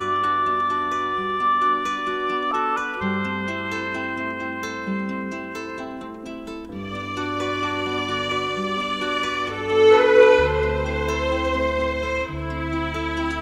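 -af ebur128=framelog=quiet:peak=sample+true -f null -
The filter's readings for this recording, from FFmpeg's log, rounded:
Integrated loudness:
  I:         -22.1 LUFS
  Threshold: -32.4 LUFS
Loudness range:
  LRA:         9.9 LU
  Threshold: -42.3 LUFS
  LRA low:   -28.6 LUFS
  LRA high:  -18.7 LUFS
Sample peak:
  Peak:       -1.9 dBFS
True peak:
  Peak:       -1.9 dBFS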